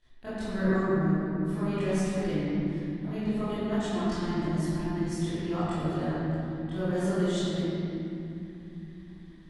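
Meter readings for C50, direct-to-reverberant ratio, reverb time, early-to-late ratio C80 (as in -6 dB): -7.5 dB, -17.0 dB, 2.9 s, -4.5 dB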